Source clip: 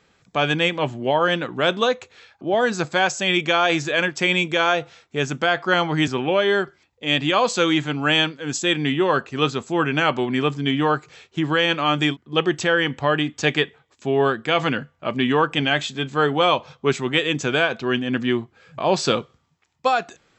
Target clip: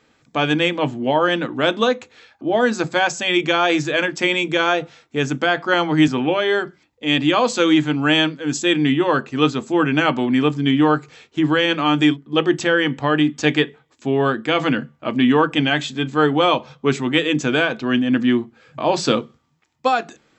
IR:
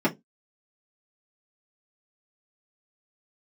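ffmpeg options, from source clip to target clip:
-filter_complex "[0:a]asplit=2[link_01][link_02];[1:a]atrim=start_sample=2205,lowshelf=frequency=140:gain=9[link_03];[link_02][link_03]afir=irnorm=-1:irlink=0,volume=-24dB[link_04];[link_01][link_04]amix=inputs=2:normalize=0"

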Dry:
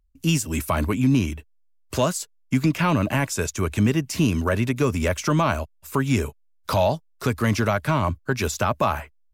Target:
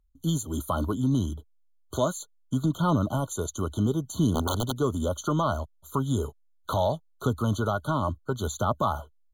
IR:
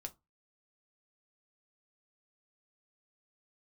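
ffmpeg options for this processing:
-filter_complex "[0:a]aphaser=in_gain=1:out_gain=1:delay=3.9:decay=0.24:speed=0.69:type=triangular,asplit=3[link_01][link_02][link_03];[link_01]afade=type=out:start_time=4.34:duration=0.02[link_04];[link_02]aeval=exprs='(mod(5.01*val(0)+1,2)-1)/5.01':channel_layout=same,afade=type=in:start_time=4.34:duration=0.02,afade=type=out:start_time=4.76:duration=0.02[link_05];[link_03]afade=type=in:start_time=4.76:duration=0.02[link_06];[link_04][link_05][link_06]amix=inputs=3:normalize=0,afftfilt=real='re*eq(mod(floor(b*sr/1024/1500),2),0)':imag='im*eq(mod(floor(b*sr/1024/1500),2),0)':win_size=1024:overlap=0.75,volume=-4.5dB"

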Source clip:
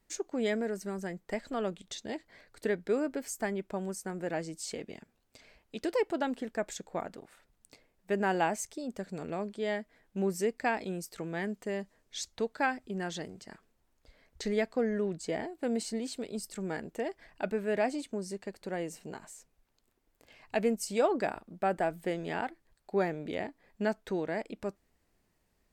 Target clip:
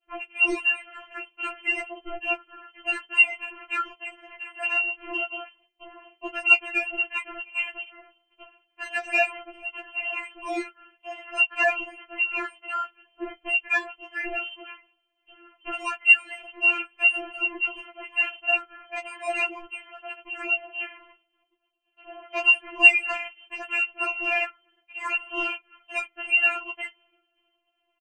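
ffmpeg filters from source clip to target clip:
ffmpeg -i in.wav -filter_complex "[0:a]asetrate=40517,aresample=44100,asplit=2[link_01][link_02];[link_02]alimiter=level_in=0.5dB:limit=-24dB:level=0:latency=1:release=35,volume=-0.5dB,volume=3dB[link_03];[link_01][link_03]amix=inputs=2:normalize=0,aexciter=amount=7.3:drive=1.5:freq=2500,acrusher=bits=5:mode=log:mix=0:aa=0.000001,lowpass=frequency=2700:width_type=q:width=0.5098,lowpass=frequency=2700:width_type=q:width=0.6013,lowpass=frequency=2700:width_type=q:width=0.9,lowpass=frequency=2700:width_type=q:width=2.563,afreqshift=-3200,agate=range=-33dB:threshold=-58dB:ratio=3:detection=peak,equalizer=frequency=230:width_type=o:width=2.7:gain=7.5,asplit=2[link_04][link_05];[link_05]adelay=16,volume=-10.5dB[link_06];[link_04][link_06]amix=inputs=2:normalize=0,acontrast=81,afftfilt=real='re*4*eq(mod(b,16),0)':imag='im*4*eq(mod(b,16),0)':win_size=2048:overlap=0.75,volume=-3.5dB" out.wav

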